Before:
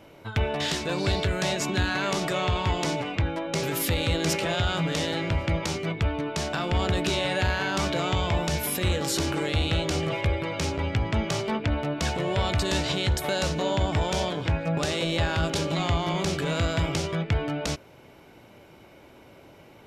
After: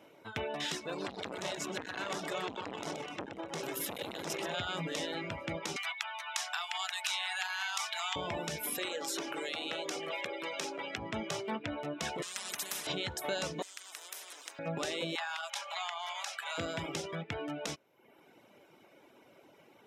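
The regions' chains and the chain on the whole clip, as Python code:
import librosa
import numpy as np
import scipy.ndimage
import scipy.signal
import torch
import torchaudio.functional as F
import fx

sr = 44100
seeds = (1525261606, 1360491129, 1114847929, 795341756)

y = fx.chain(x, sr, fx.notch(hz=2400.0, q=21.0),
    fx.echo_feedback(ms=125, feedback_pct=56, wet_db=-8),
    fx.transformer_sat(knee_hz=980.0), at=(0.8, 4.54))
y = fx.chain(y, sr, fx.steep_highpass(hz=720.0, slope=72),
    fx.tilt_eq(slope=2.0),
    fx.band_squash(depth_pct=70), at=(5.76, 8.16))
y = fx.chain(y, sr, fx.highpass(hz=340.0, slope=12),
    fx.band_squash(depth_pct=70), at=(8.78, 10.98))
y = fx.chain(y, sr, fx.comb(ms=4.9, depth=0.77),
    fx.spectral_comp(ratio=10.0), at=(12.22, 12.87))
y = fx.chain(y, sr, fx.ellip_highpass(hz=630.0, order=4, stop_db=80),
    fx.spectral_comp(ratio=10.0), at=(13.62, 14.59))
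y = fx.chain(y, sr, fx.steep_highpass(hz=700.0, slope=48),
    fx.band_squash(depth_pct=70), at=(15.15, 16.58))
y = scipy.signal.sosfilt(scipy.signal.butter(2, 210.0, 'highpass', fs=sr, output='sos'), y)
y = fx.dereverb_blind(y, sr, rt60_s=0.77)
y = fx.notch(y, sr, hz=4500.0, q=10.0)
y = F.gain(torch.from_numpy(y), -6.5).numpy()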